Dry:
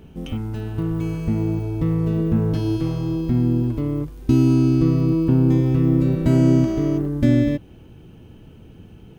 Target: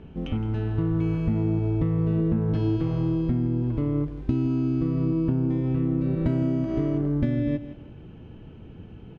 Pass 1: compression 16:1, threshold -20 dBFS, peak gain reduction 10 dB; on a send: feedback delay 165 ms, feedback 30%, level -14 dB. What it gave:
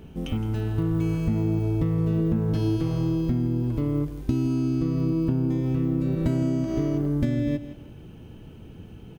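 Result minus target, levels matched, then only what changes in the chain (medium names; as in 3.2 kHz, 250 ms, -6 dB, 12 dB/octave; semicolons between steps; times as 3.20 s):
4 kHz band +4.5 dB
add after compression: low-pass 2.9 kHz 12 dB/octave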